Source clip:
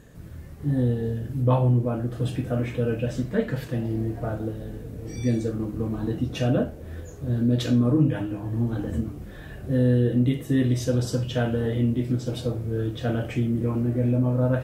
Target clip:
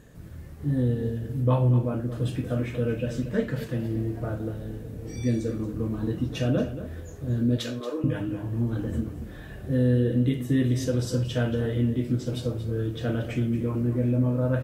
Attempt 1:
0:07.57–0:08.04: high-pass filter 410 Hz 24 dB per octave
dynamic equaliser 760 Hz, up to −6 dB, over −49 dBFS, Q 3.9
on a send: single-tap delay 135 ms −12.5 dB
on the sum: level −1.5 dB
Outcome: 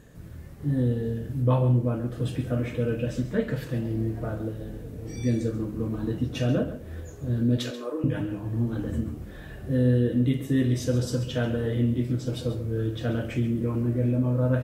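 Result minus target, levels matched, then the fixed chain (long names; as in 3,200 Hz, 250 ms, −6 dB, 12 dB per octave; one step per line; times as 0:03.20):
echo 95 ms early
0:07.57–0:08.04: high-pass filter 410 Hz 24 dB per octave
dynamic equaliser 760 Hz, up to −6 dB, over −49 dBFS, Q 3.9
on a send: single-tap delay 230 ms −12.5 dB
on the sum: level −1.5 dB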